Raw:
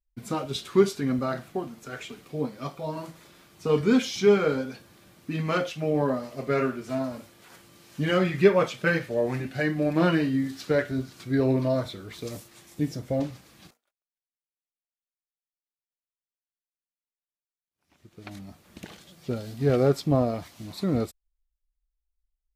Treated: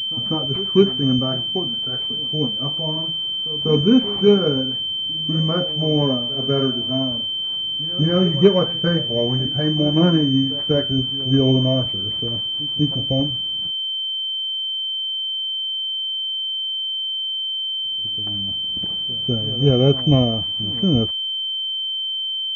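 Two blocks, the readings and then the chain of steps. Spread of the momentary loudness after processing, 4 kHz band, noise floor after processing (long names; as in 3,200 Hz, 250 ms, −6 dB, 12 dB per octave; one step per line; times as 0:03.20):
6 LU, +25.0 dB, −25 dBFS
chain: low-shelf EQ 320 Hz +11.5 dB
echo ahead of the sound 196 ms −17 dB
switching amplifier with a slow clock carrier 3,100 Hz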